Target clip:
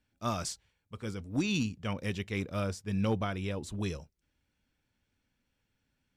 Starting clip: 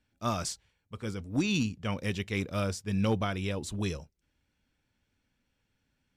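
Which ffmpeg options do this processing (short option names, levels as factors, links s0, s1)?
-filter_complex "[0:a]asettb=1/sr,asplit=3[s0][s1][s2];[s0]atrim=end=1.934[s3];[s1]atrim=start=1.93:end=3.93,asetpts=PTS-STARTPTS,afade=t=in:d=0.004:c=qsin,afade=t=out:st=1.996:d=0.004:c=qsin,adynamicequalizer=threshold=0.00398:dfrequency=2300:dqfactor=0.7:tfrequency=2300:tqfactor=0.7:attack=5:release=100:ratio=0.375:range=2:mode=cutabove:tftype=highshelf[s4];[s2]atrim=start=3.926[s5];[s3][s4]acrossfade=d=0.004:c1=hsin:c2=qsin[s6];[s6][s5]acrossfade=d=0.004:c1=qsin:c2=hsin,volume=0.794"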